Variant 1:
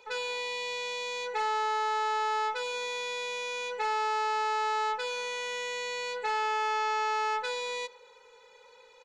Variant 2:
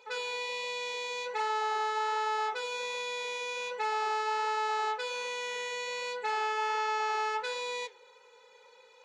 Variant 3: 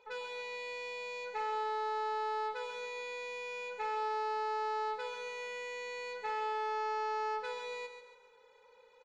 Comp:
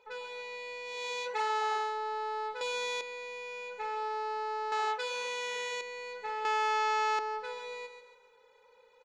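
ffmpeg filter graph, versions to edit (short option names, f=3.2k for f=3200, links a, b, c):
-filter_complex "[1:a]asplit=2[a][b];[0:a]asplit=2[c][d];[2:a]asplit=5[e][f][g][h][i];[e]atrim=end=1.08[j];[a]atrim=start=0.84:end=1.98[k];[f]atrim=start=1.74:end=2.612[l];[c]atrim=start=2.608:end=3.012[m];[g]atrim=start=3.008:end=4.722[n];[b]atrim=start=4.718:end=5.812[o];[h]atrim=start=5.808:end=6.452[p];[d]atrim=start=6.448:end=7.192[q];[i]atrim=start=7.188[r];[j][k]acrossfade=d=0.24:c1=tri:c2=tri[s];[s][l]acrossfade=d=0.24:c1=tri:c2=tri[t];[t][m]acrossfade=d=0.004:c1=hsin:c2=hsin[u];[u][n]acrossfade=d=0.004:c1=hsin:c2=hsin[v];[v][o]acrossfade=d=0.004:c1=hsin:c2=hsin[w];[w][p]acrossfade=d=0.004:c1=hsin:c2=hsin[x];[x][q]acrossfade=d=0.004:c1=hsin:c2=hsin[y];[y][r]acrossfade=d=0.004:c1=hsin:c2=hsin"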